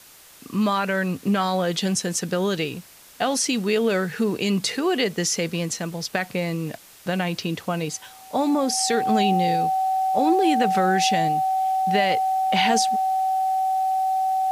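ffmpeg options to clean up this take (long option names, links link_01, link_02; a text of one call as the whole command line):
ffmpeg -i in.wav -af "adeclick=threshold=4,bandreject=frequency=760:width=30,afwtdn=0.0045" out.wav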